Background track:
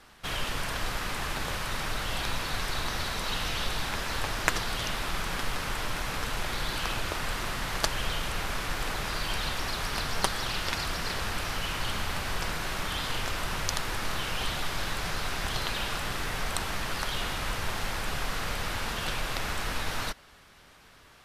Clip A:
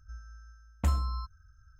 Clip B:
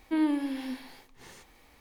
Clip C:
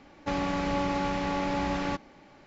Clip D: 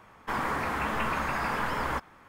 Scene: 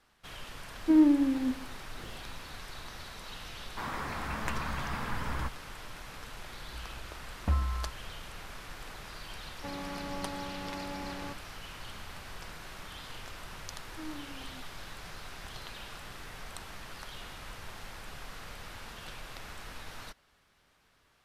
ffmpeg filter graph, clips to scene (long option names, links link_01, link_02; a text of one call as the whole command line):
ffmpeg -i bed.wav -i cue0.wav -i cue1.wav -i cue2.wav -i cue3.wav -filter_complex "[2:a]asplit=2[link_01][link_02];[0:a]volume=-13dB[link_03];[link_01]tiltshelf=frequency=770:gain=9[link_04];[4:a]asubboost=boost=6:cutoff=210[link_05];[1:a]lowpass=2100[link_06];[3:a]highpass=50[link_07];[link_04]atrim=end=1.8,asetpts=PTS-STARTPTS,volume=-1dB,afade=type=in:duration=0.004:curve=hsin,afade=type=out:start_time=1.796:duration=0.004:curve=hsin,adelay=770[link_08];[link_05]atrim=end=2.28,asetpts=PTS-STARTPTS,volume=-7.5dB,afade=type=in:duration=0.004:curve=hsin,afade=type=out:start_time=2.276:duration=0.004:curve=hsin,adelay=153909S[link_09];[link_06]atrim=end=1.79,asetpts=PTS-STARTPTS,volume=-1dB,afade=type=in:duration=0.004:curve=hsin,afade=type=out:start_time=1.786:duration=0.004:curve=hsin,adelay=6640[link_10];[link_07]atrim=end=2.46,asetpts=PTS-STARTPTS,volume=-11dB,afade=type=in:duration=0.004:curve=hsin,afade=type=out:start_time=2.456:duration=0.004:curve=hsin,adelay=9370[link_11];[link_02]atrim=end=1.8,asetpts=PTS-STARTPTS,volume=-17.5dB,afade=type=in:duration=0.004:curve=hsin,afade=type=out:start_time=1.796:duration=0.004:curve=hsin,adelay=13860[link_12];[link_03][link_08][link_09][link_10][link_11][link_12]amix=inputs=6:normalize=0" out.wav